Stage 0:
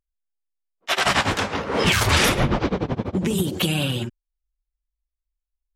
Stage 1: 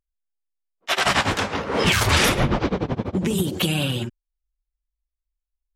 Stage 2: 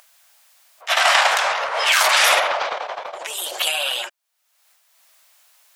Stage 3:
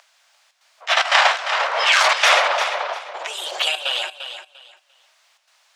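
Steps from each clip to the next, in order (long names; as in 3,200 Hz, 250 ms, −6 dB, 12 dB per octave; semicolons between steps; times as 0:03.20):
no processing that can be heard
elliptic high-pass filter 620 Hz, stop band 70 dB; transient designer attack −2 dB, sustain +11 dB; upward compression, threshold −32 dBFS; level +4.5 dB
three-way crossover with the lows and the highs turned down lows −22 dB, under 320 Hz, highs −22 dB, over 7,000 Hz; gate pattern "xxxxx.xxxx.xx..x" 148 BPM −12 dB; on a send: feedback echo with a high-pass in the loop 347 ms, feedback 22%, high-pass 170 Hz, level −9.5 dB; on the sum: level +1.5 dB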